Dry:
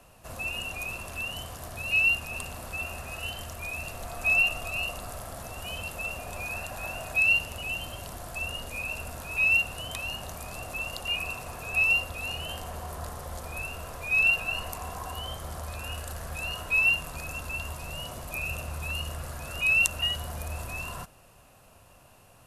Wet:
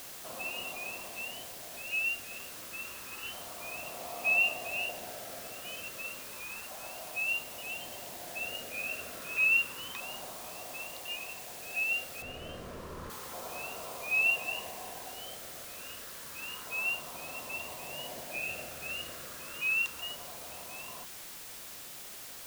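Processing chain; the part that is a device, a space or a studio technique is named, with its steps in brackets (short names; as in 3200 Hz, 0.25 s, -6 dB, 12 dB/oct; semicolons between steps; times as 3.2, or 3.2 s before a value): shortwave radio (BPF 280–2900 Hz; tremolo 0.22 Hz, depth 52%; LFO notch saw down 0.3 Hz 630–2200 Hz; white noise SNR 8 dB); 12.22–13.1 tilt -3.5 dB/oct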